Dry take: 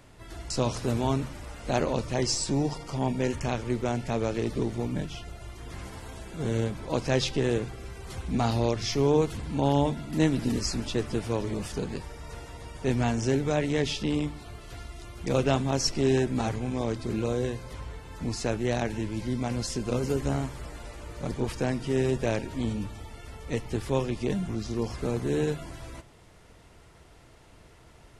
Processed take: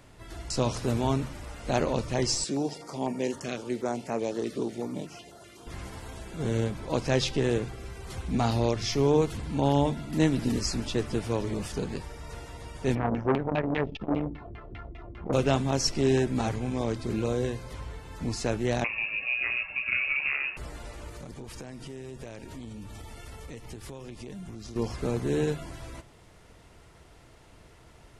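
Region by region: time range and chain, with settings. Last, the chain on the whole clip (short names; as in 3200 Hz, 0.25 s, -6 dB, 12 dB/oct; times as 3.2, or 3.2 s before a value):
2.44–5.67 HPF 230 Hz + stepped notch 8 Hz 900–3500 Hz
12.95–15.33 LPF 6300 Hz + LFO low-pass saw down 5 Hz 230–2900 Hz + core saturation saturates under 780 Hz
18.84–20.57 HPF 41 Hz + de-hum 70.14 Hz, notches 22 + inverted band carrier 2700 Hz
21.08–24.76 high shelf 6600 Hz +6.5 dB + compressor, threshold -38 dBFS
whole clip: dry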